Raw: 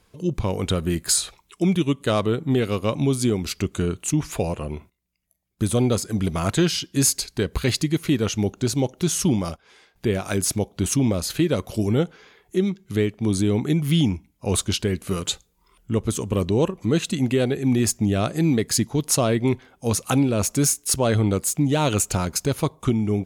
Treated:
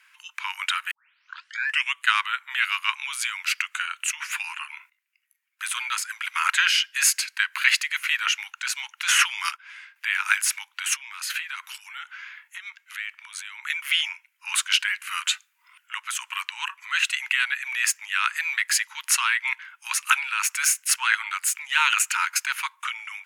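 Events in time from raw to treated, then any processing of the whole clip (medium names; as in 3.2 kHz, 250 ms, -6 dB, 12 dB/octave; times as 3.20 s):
0.91 s: tape start 1.03 s
9.08–9.51 s: three bands compressed up and down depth 100%
10.96–13.64 s: compression 5:1, threshold -26 dBFS
whole clip: steep high-pass 910 Hz 96 dB/octave; high-order bell 2 kHz +13 dB 1.3 oct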